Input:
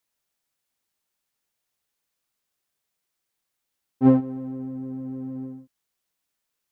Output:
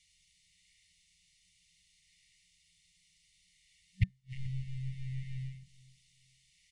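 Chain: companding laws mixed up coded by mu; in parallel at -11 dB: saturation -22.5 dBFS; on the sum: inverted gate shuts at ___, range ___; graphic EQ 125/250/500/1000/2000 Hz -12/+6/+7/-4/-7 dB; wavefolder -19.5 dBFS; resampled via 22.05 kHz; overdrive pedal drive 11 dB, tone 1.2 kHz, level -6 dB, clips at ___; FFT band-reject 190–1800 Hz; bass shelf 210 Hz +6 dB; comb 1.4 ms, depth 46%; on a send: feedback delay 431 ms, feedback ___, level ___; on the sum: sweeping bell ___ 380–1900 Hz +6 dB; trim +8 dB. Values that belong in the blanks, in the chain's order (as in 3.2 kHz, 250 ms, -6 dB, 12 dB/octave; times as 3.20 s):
-15 dBFS, -41 dB, -19.5 dBFS, 26%, -21.5 dB, 0.67 Hz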